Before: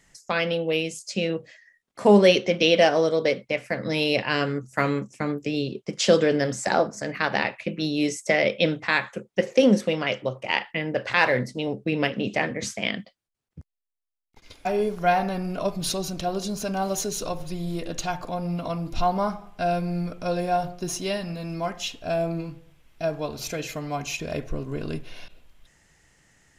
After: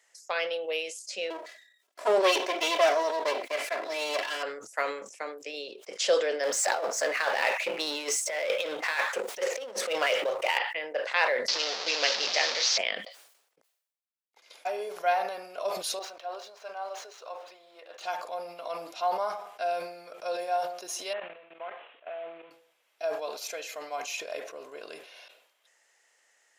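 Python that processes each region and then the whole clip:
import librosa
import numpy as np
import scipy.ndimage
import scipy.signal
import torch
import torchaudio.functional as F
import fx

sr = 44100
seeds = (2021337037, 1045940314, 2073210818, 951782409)

y = fx.chain(x, sr, fx.lower_of_two(delay_ms=3.0),
    fx.peak_eq(hz=190.0, db=6.5, octaves=2.6), at=(1.3, 4.43))
y = fx.chain(y, sr, fx.over_compress(threshold_db=-26.0, ratio=-0.5),
    fx.power_curve(exponent=0.7), at=(6.43, 10.58))
y = fx.chain(y, sr, fx.delta_mod(bps=32000, step_db=-22.5),
    fx.peak_eq(hz=4800.0, db=14.0, octaves=1.3), at=(11.48, 12.78))
y = fx.chain(y, sr, fx.median_filter(points=5),
    fx.highpass(hz=990.0, slope=12),
    fx.tilt_eq(slope=-4.5), at=(15.99, 18.01))
y = fx.chain(y, sr, fx.cvsd(bps=16000),
    fx.level_steps(step_db=16), at=(21.13, 22.51))
y = scipy.signal.sosfilt(scipy.signal.cheby1(3, 1.0, 520.0, 'highpass', fs=sr, output='sos'), y)
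y = fx.sustainer(y, sr, db_per_s=75.0)
y = F.gain(torch.from_numpy(y), -4.5).numpy()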